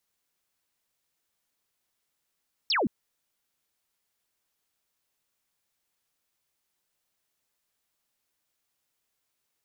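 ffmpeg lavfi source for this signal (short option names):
-f lavfi -i "aevalsrc='0.075*clip(t/0.002,0,1)*clip((0.17-t)/0.002,0,1)*sin(2*PI*5700*0.17/log(180/5700)*(exp(log(180/5700)*t/0.17)-1))':d=0.17:s=44100"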